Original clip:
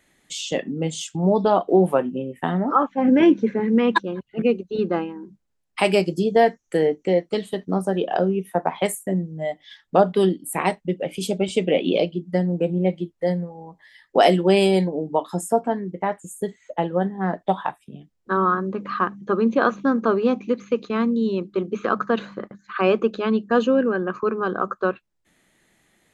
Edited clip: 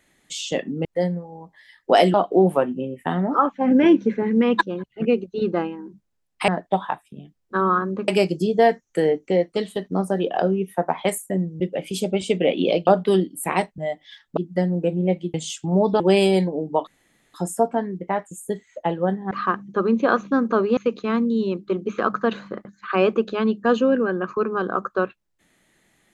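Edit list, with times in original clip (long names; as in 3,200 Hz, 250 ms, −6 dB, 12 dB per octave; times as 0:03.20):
0:00.85–0:01.51: swap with 0:13.11–0:14.40
0:09.37–0:09.96: swap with 0:10.87–0:12.14
0:15.27: splice in room tone 0.47 s
0:17.24–0:18.84: move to 0:05.85
0:20.30–0:20.63: remove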